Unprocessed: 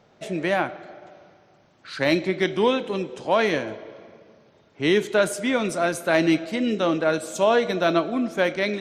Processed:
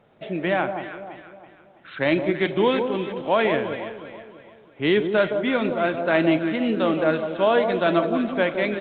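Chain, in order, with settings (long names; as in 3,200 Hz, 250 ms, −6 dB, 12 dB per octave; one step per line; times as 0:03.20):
delay that swaps between a low-pass and a high-pass 165 ms, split 1,100 Hz, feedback 63%, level −6.5 dB
downsampling to 8,000 Hz
Opus 32 kbit/s 48,000 Hz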